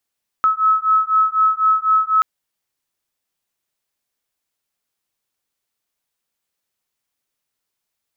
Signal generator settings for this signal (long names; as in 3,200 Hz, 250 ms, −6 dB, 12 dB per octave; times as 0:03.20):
two tones that beat 1,290 Hz, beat 4 Hz, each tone −16 dBFS 1.78 s